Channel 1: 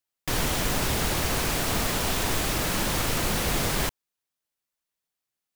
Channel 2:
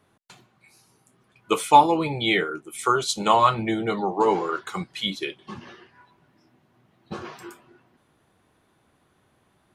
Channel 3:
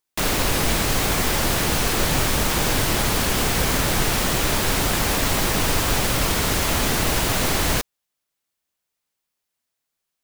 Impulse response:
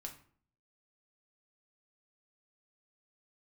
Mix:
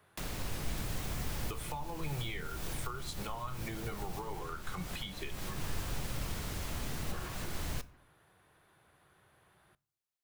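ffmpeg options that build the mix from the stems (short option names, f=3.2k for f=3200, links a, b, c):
-filter_complex "[0:a]adelay=500,volume=-11.5dB[a];[1:a]alimiter=limit=-11dB:level=0:latency=1:release=224,equalizer=f=250:t=o:w=0.67:g=-11,equalizer=f=1.6k:t=o:w=0.67:g=4,equalizer=f=6.3k:t=o:w=0.67:g=-5,volume=-3dB,asplit=3[b][c][d];[c]volume=-9.5dB[e];[2:a]volume=-15.5dB,asplit=2[f][g];[g]volume=-5dB[h];[d]apad=whole_len=451389[i];[f][i]sidechaincompress=threshold=-42dB:ratio=8:attack=6:release=237[j];[a][b]amix=inputs=2:normalize=0,highshelf=f=11k:g=8,acompressor=threshold=-34dB:ratio=3,volume=0dB[k];[3:a]atrim=start_sample=2205[l];[e][h]amix=inputs=2:normalize=0[m];[m][l]afir=irnorm=-1:irlink=0[n];[j][k][n]amix=inputs=3:normalize=0,acrossover=split=180[o][p];[p]acompressor=threshold=-42dB:ratio=4[q];[o][q]amix=inputs=2:normalize=0"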